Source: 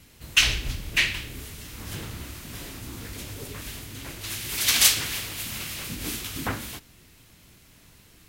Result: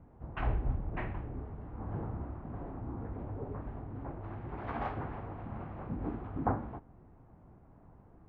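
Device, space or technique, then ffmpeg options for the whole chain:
under water: -af "lowpass=f=1100:w=0.5412,lowpass=f=1100:w=1.3066,equalizer=f=770:t=o:w=0.4:g=7,volume=0.891"

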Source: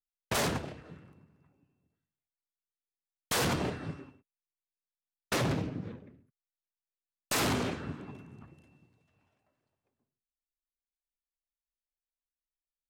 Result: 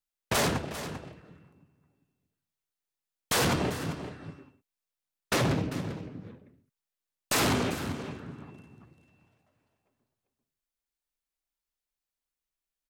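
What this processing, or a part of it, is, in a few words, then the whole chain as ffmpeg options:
ducked delay: -filter_complex "[0:a]asplit=3[s0][s1][s2];[s1]adelay=394,volume=0.447[s3];[s2]apad=whole_len=586025[s4];[s3][s4]sidechaincompress=threshold=0.0126:ratio=8:attack=43:release=798[s5];[s0][s5]amix=inputs=2:normalize=0,volume=1.5"

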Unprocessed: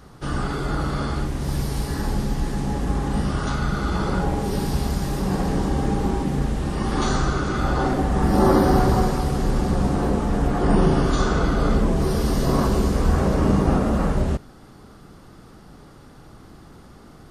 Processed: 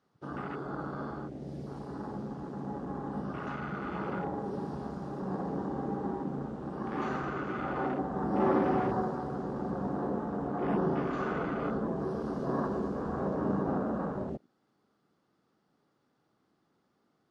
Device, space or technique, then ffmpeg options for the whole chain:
over-cleaned archive recording: -af "highpass=190,lowpass=6300,afwtdn=0.0282,volume=0.355"

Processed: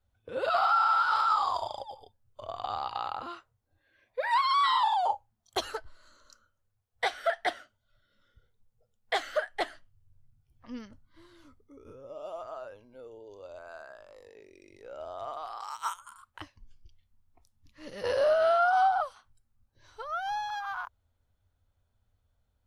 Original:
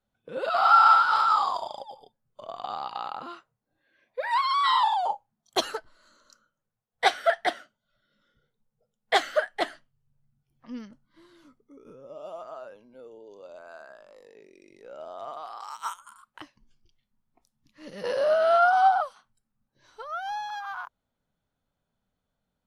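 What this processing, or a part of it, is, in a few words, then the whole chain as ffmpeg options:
car stereo with a boomy subwoofer: -af "lowshelf=f=120:t=q:w=3:g=10,alimiter=limit=0.141:level=0:latency=1:release=270"

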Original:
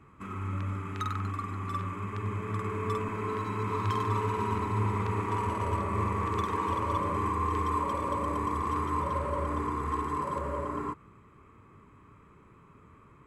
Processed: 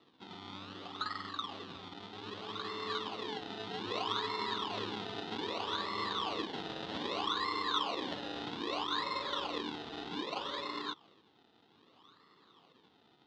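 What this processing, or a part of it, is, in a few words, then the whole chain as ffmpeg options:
circuit-bent sampling toy: -af "acrusher=samples=27:mix=1:aa=0.000001:lfo=1:lforange=27:lforate=0.63,highpass=410,equalizer=f=410:t=q:w=4:g=-4,equalizer=f=600:t=q:w=4:g=-9,equalizer=f=1000:t=q:w=4:g=-4,equalizer=f=1600:t=q:w=4:g=-7,equalizer=f=2300:t=q:w=4:g=-8,equalizer=f=3600:t=q:w=4:g=8,lowpass=f=4200:w=0.5412,lowpass=f=4200:w=1.3066"

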